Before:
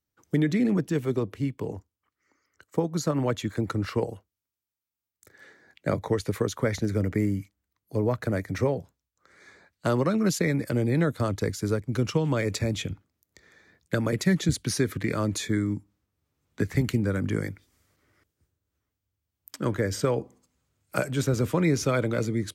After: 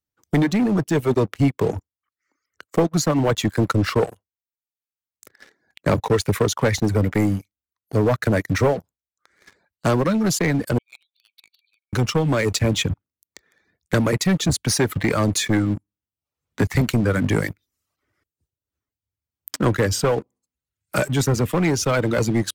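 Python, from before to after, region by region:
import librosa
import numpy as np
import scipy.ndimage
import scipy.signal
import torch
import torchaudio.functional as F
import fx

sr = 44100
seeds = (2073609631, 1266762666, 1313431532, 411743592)

y = fx.chain(x, sr, fx.brickwall_bandpass(low_hz=2200.0, high_hz=4600.0),
    fx.tilt_eq(slope=-4.0), at=(10.78, 11.93))
y = fx.dereverb_blind(y, sr, rt60_s=0.76)
y = fx.leveller(y, sr, passes=3)
y = fx.rider(y, sr, range_db=10, speed_s=0.5)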